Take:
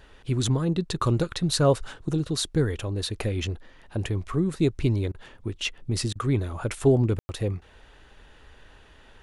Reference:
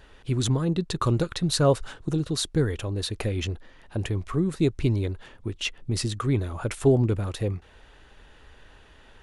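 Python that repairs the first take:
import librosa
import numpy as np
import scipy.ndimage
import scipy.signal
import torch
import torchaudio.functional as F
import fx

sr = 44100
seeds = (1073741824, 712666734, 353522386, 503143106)

y = fx.fix_ambience(x, sr, seeds[0], print_start_s=8.66, print_end_s=9.16, start_s=7.19, end_s=7.29)
y = fx.fix_interpolate(y, sr, at_s=(5.12, 6.13), length_ms=24.0)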